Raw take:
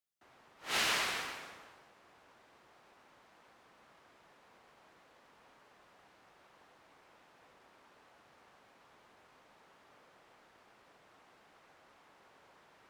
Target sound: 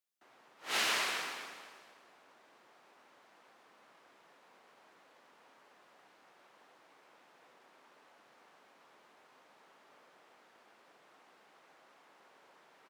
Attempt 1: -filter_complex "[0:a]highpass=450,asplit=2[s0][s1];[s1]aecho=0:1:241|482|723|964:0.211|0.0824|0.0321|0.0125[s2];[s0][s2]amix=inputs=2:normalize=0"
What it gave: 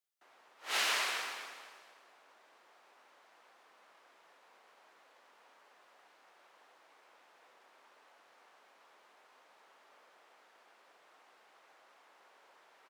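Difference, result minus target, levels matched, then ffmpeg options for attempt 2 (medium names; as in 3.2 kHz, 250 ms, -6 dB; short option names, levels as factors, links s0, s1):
250 Hz band -6.5 dB
-filter_complex "[0:a]highpass=220,asplit=2[s0][s1];[s1]aecho=0:1:241|482|723|964:0.211|0.0824|0.0321|0.0125[s2];[s0][s2]amix=inputs=2:normalize=0"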